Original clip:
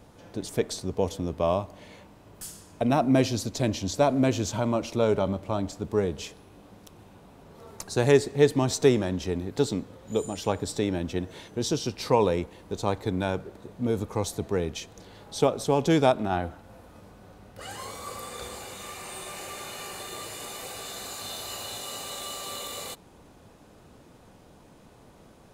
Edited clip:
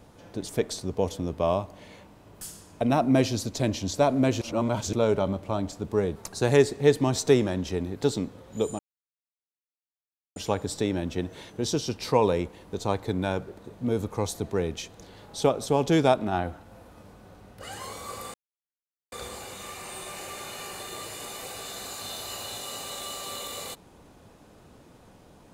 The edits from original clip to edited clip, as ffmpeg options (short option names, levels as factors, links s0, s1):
-filter_complex "[0:a]asplit=6[s0][s1][s2][s3][s4][s5];[s0]atrim=end=4.412[s6];[s1]atrim=start=4.408:end=4.932,asetpts=PTS-STARTPTS,areverse[s7];[s2]atrim=start=4.928:end=6.162[s8];[s3]atrim=start=7.708:end=10.34,asetpts=PTS-STARTPTS,afade=t=out:st=2.628:d=0.004:c=hsin,apad=pad_dur=1.57[s9];[s4]atrim=start=10.34:end=18.32,asetpts=PTS-STARTPTS,afade=t=in:d=0.004:c=hsin,afade=t=out:st=7.976:d=0.004:c=hsin,apad=pad_dur=0.78[s10];[s5]atrim=start=18.32,asetpts=PTS-STARTPTS,afade=t=in:d=0.004:c=hsin[s11];[s6][s7]acrossfade=d=0.004:c1=hsin:c2=hsin[s12];[s12][s8]acrossfade=d=0.004:c1=hsin:c2=hsin[s13];[s9][s10][s11]concat=n=3:v=0:a=1[s14];[s13][s14]acrossfade=d=0.004:c1=hsin:c2=hsin"